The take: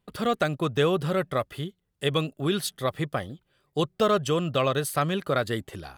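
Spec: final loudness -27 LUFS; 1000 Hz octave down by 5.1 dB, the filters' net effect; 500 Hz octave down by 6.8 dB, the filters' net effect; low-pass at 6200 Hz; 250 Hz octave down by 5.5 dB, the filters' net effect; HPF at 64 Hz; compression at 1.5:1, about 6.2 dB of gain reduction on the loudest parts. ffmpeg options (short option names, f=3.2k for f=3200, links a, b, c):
-af "highpass=64,lowpass=6.2k,equalizer=f=250:t=o:g=-7,equalizer=f=500:t=o:g=-5,equalizer=f=1k:t=o:g=-5.5,acompressor=threshold=-41dB:ratio=1.5,volume=10dB"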